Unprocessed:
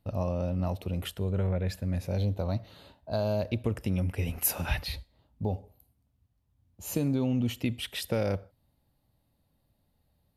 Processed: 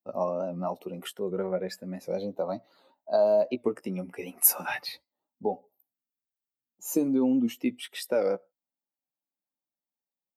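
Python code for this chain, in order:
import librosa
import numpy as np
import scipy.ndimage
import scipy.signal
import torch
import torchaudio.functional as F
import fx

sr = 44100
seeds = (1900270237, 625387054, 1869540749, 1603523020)

p1 = fx.bin_expand(x, sr, power=1.5)
p2 = scipy.signal.sosfilt(scipy.signal.butter(4, 260.0, 'highpass', fs=sr, output='sos'), p1)
p3 = fx.peak_eq(p2, sr, hz=3200.0, db=-9.5, octaves=1.4)
p4 = fx.rider(p3, sr, range_db=4, speed_s=2.0)
p5 = p3 + (p4 * 10.0 ** (2.5 / 20.0))
p6 = fx.doubler(p5, sr, ms=16.0, db=-9)
y = fx.record_warp(p6, sr, rpm=78.0, depth_cents=100.0)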